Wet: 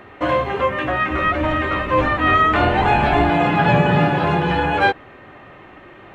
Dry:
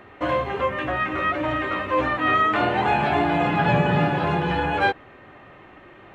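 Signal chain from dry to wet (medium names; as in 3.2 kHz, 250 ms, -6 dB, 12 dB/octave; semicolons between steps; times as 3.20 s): 1.10–3.30 s: octave divider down 2 oct, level 0 dB; trim +4.5 dB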